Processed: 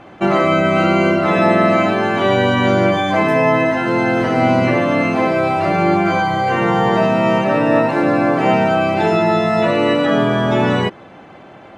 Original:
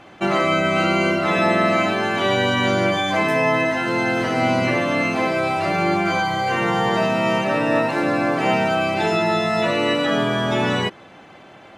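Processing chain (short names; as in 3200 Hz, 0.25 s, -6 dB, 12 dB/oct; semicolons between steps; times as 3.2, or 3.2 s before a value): high shelf 2200 Hz -10.5 dB; gain +6 dB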